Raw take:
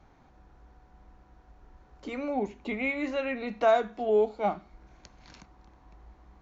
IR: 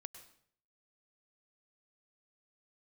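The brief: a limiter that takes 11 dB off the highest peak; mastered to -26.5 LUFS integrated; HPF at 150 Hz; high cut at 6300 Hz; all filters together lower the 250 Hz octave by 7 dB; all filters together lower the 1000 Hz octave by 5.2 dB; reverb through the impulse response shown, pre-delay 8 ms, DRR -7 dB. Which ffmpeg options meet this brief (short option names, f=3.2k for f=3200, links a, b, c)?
-filter_complex "[0:a]highpass=150,lowpass=6.3k,equalizer=f=250:t=o:g=-7,equalizer=f=1k:t=o:g=-8,alimiter=level_in=4dB:limit=-24dB:level=0:latency=1,volume=-4dB,asplit=2[a][b];[1:a]atrim=start_sample=2205,adelay=8[c];[b][c]afir=irnorm=-1:irlink=0,volume=12.5dB[d];[a][d]amix=inputs=2:normalize=0,volume=4dB"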